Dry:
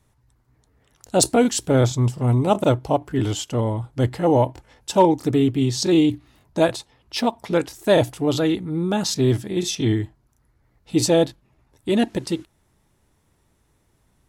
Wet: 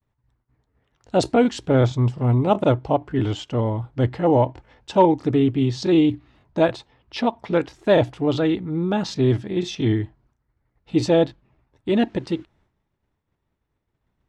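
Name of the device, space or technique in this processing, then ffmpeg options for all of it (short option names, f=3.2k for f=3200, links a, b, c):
hearing-loss simulation: -af "lowpass=3.3k,agate=range=-33dB:threshold=-55dB:ratio=3:detection=peak"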